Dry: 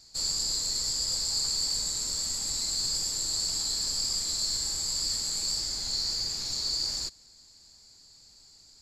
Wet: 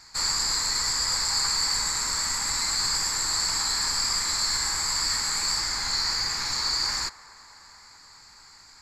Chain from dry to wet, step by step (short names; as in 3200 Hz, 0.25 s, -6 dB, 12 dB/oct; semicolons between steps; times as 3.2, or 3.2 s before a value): band shelf 1400 Hz +15.5 dB; band-limited delay 0.214 s, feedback 79%, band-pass 900 Hz, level -18.5 dB; gain +3.5 dB